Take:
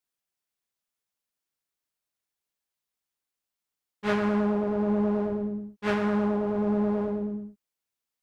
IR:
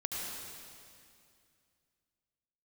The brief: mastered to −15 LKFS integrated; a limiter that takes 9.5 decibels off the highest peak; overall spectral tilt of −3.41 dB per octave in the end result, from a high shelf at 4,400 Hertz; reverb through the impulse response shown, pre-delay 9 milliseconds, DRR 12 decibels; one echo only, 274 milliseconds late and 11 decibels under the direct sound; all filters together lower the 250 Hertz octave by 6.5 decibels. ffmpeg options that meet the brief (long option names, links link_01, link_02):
-filter_complex "[0:a]equalizer=frequency=250:width_type=o:gain=-8.5,highshelf=frequency=4400:gain=-3,alimiter=level_in=1dB:limit=-24dB:level=0:latency=1,volume=-1dB,aecho=1:1:274:0.282,asplit=2[link_01][link_02];[1:a]atrim=start_sample=2205,adelay=9[link_03];[link_02][link_03]afir=irnorm=-1:irlink=0,volume=-15dB[link_04];[link_01][link_04]amix=inputs=2:normalize=0,volume=19dB"